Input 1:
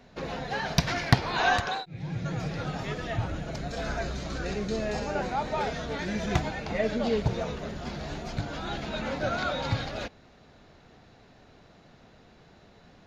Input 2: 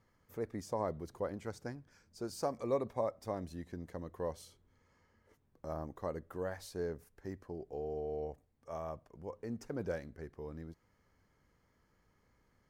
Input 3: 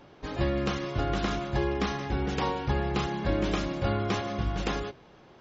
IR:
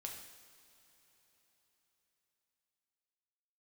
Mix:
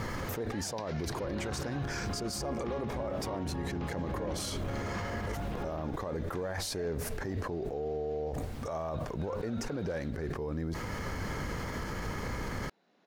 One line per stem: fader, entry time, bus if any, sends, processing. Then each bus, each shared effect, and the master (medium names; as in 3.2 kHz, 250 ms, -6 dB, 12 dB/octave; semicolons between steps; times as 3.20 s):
-5.0 dB, 0.00 s, no send, echo send -14.5 dB, high-pass 210 Hz 24 dB/octave; auto duck -15 dB, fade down 1.75 s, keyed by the second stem
-2.0 dB, 0.00 s, no send, no echo send, level flattener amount 100%
-5.5 dB, 0.85 s, no send, echo send -7 dB, peaking EQ 12 kHz -15 dB 2.4 oct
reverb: none
echo: feedback delay 259 ms, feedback 41%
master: treble shelf 11 kHz -7.5 dB; peak limiter -27 dBFS, peak gain reduction 11.5 dB